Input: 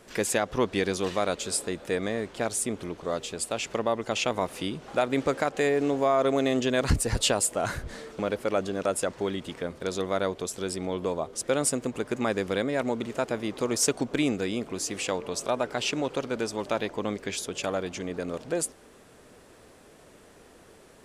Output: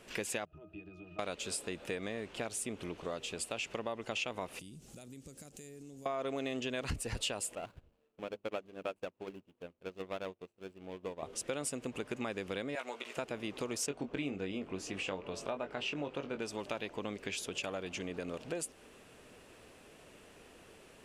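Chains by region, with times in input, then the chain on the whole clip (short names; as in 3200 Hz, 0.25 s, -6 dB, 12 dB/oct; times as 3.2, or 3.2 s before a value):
0.45–1.19 compressor, threshold -28 dBFS + octave resonator D#, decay 0.16 s
4.59–6.06 EQ curve 170 Hz 0 dB, 980 Hz -22 dB, 2900 Hz -15 dB, 7100 Hz +7 dB, 12000 Hz +10 dB + compressor, threshold -43 dBFS
7.55–11.23 median filter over 25 samples + notches 50/100/150/200/250/300/350/400 Hz + upward expander 2.5:1, over -44 dBFS
12.75–13.17 HPF 690 Hz + doubler 16 ms -5.5 dB
13.86–16.42 LPF 2100 Hz 6 dB/oct + doubler 21 ms -7 dB
whole clip: bell 2700 Hz +8.5 dB 0.5 oct; compressor 3:1, threshold -32 dBFS; gain -4.5 dB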